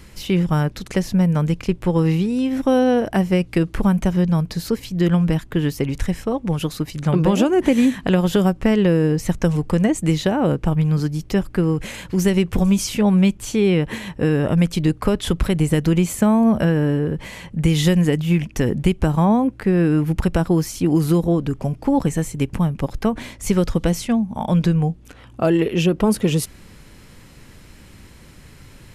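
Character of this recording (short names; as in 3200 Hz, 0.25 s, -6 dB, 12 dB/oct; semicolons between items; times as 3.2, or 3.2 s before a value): noise floor -45 dBFS; spectral tilt -7.5 dB/oct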